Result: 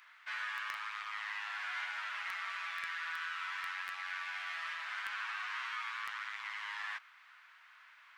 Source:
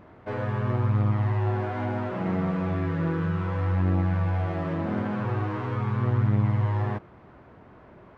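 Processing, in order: Bessel high-pass 2300 Hz, order 6; in parallel at -8.5 dB: requantised 6-bit, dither none; on the sum: gain +8.5 dB

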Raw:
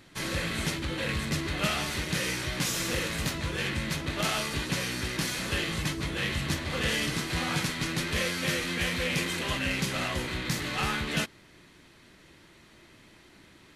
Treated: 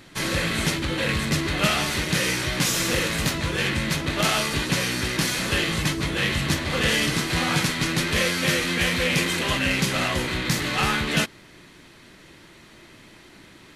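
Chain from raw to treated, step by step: bell 68 Hz -3.5 dB 0.84 oct; gain +7 dB

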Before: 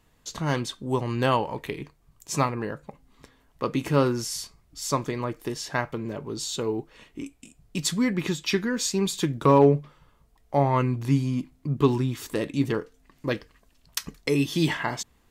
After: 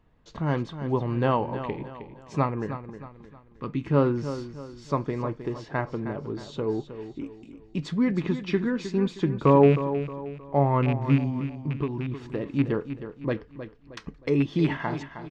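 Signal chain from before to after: rattling part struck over -21 dBFS, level -17 dBFS; 2.66–3.91 bell 620 Hz -14.5 dB 1.3 oct; 11.26–12.56 compressor 6:1, threshold -26 dBFS, peak gain reduction 11.5 dB; tape spacing loss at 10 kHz 35 dB; feedback echo 0.313 s, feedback 39%, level -11 dB; gain +1.5 dB

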